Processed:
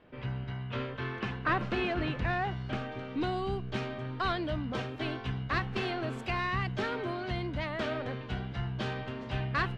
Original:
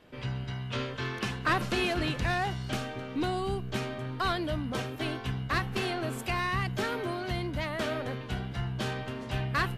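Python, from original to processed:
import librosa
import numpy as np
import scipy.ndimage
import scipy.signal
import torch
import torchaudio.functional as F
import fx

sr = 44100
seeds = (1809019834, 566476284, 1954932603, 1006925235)

y = fx.lowpass(x, sr, hz=fx.steps((0.0, 2600.0), (2.92, 4200.0)), slope=12)
y = y * librosa.db_to_amplitude(-1.5)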